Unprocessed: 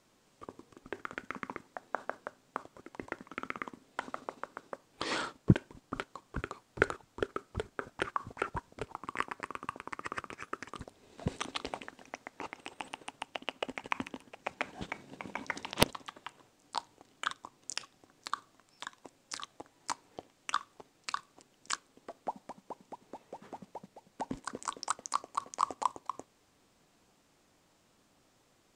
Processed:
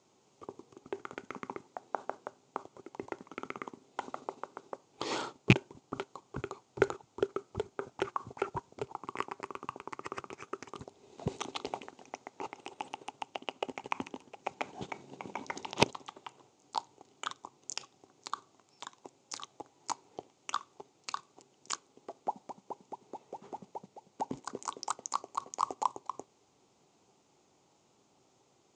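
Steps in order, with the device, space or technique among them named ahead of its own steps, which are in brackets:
car door speaker with a rattle (loose part that buzzes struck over −21 dBFS, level −8 dBFS; loudspeaker in its box 86–7,400 Hz, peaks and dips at 130 Hz +4 dB, 390 Hz +8 dB, 830 Hz +7 dB, 1,700 Hz −9 dB, 6,700 Hz +7 dB)
level −2 dB

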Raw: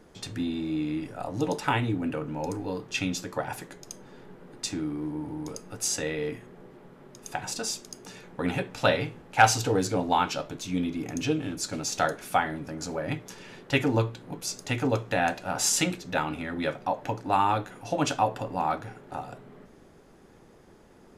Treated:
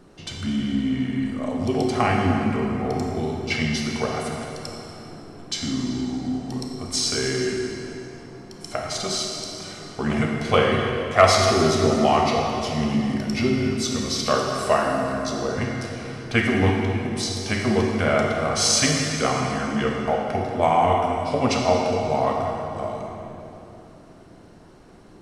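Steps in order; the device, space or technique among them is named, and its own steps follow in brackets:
slowed and reverbed (speed change −16%; convolution reverb RT60 3.0 s, pre-delay 27 ms, DRR 0 dB)
level +3.5 dB

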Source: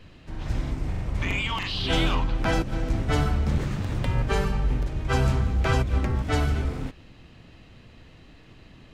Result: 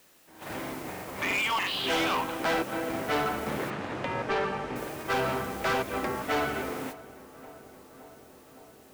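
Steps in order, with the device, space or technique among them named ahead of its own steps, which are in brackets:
aircraft radio (band-pass filter 390–2,700 Hz; hard clipping −29 dBFS, distortion −9 dB; white noise bed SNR 16 dB; noise gate −43 dBFS, range −13 dB)
0:03.70–0:04.76: high-frequency loss of the air 100 metres
feedback echo with a low-pass in the loop 565 ms, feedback 79%, low-pass 2,000 Hz, level −19 dB
level +5 dB

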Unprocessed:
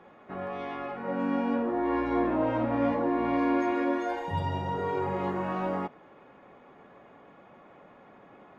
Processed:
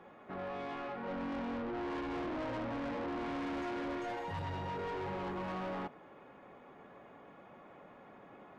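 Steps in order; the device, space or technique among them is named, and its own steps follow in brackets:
saturation between pre-emphasis and de-emphasis (high-shelf EQ 5,100 Hz +6 dB; soft clipping −34.5 dBFS, distortion −6 dB; high-shelf EQ 5,100 Hz −6 dB)
level −2 dB

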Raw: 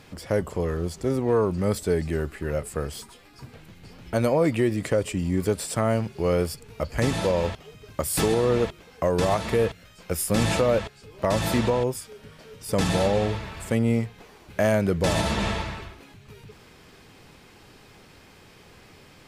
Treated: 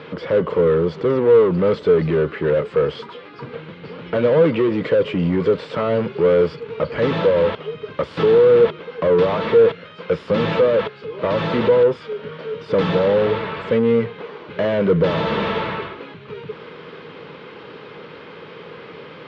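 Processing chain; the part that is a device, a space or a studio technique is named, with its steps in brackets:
overdrive pedal into a guitar cabinet (mid-hump overdrive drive 25 dB, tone 2,300 Hz, clips at −12 dBFS; loudspeaker in its box 94–3,400 Hz, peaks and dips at 160 Hz +8 dB, 470 Hz +9 dB, 740 Hz −10 dB, 1,800 Hz −5 dB, 2,500 Hz −5 dB)

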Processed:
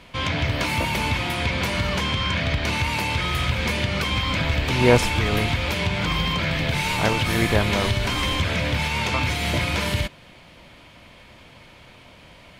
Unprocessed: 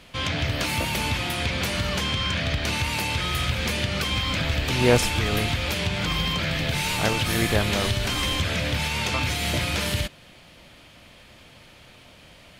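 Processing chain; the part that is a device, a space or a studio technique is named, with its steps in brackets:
inside a helmet (high-shelf EQ 4,400 Hz −7 dB; hollow resonant body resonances 980/2,200 Hz, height 8 dB)
level +2.5 dB

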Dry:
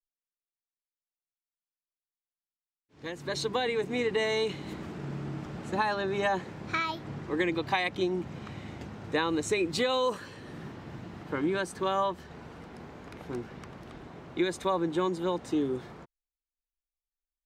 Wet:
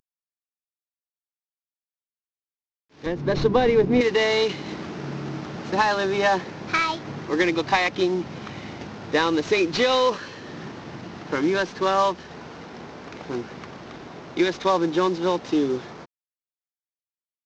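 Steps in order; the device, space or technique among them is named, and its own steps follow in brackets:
early wireless headset (high-pass filter 200 Hz 6 dB per octave; variable-slope delta modulation 32 kbit/s)
0:03.06–0:04.01: spectral tilt −4 dB per octave
level +8.5 dB

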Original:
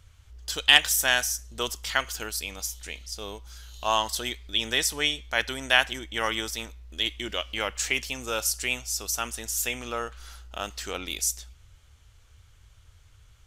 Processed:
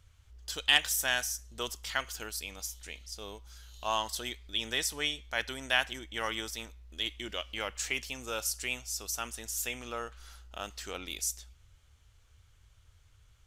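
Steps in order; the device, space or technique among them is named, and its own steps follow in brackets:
parallel distortion (in parallel at −14 dB: hard clipping −19.5 dBFS, distortion −7 dB)
on the sum: level −8 dB

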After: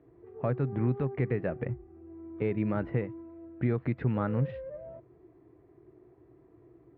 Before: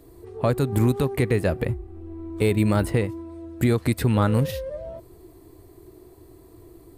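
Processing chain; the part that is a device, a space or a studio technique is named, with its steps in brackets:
bass cabinet (loudspeaker in its box 84–2,200 Hz, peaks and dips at 91 Hz −9 dB, 130 Hz +6 dB, 1,000 Hz −3 dB)
level −8.5 dB

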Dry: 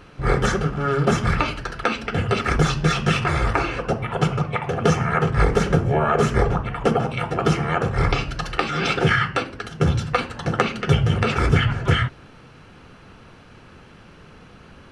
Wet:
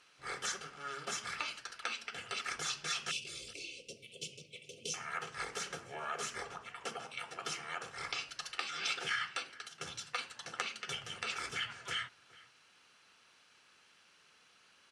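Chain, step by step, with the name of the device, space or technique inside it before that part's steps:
0:03.11–0:04.94: inverse Chebyshev band-stop filter 770–1,800 Hz, stop band 40 dB
piezo pickup straight into a mixer (low-pass filter 8,600 Hz 12 dB per octave; first difference)
slap from a distant wall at 72 metres, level −20 dB
level −3 dB

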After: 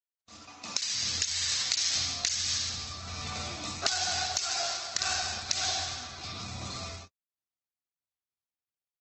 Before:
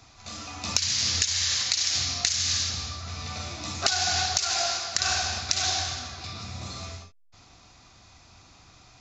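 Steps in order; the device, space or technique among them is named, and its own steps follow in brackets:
0:00.50–0:00.92: high-pass filter 130 Hz → 290 Hz 12 dB per octave
video call (high-pass filter 110 Hz 6 dB per octave; automatic gain control gain up to 7.5 dB; noise gate −38 dBFS, range −47 dB; level −7.5 dB; Opus 16 kbit/s 48,000 Hz)

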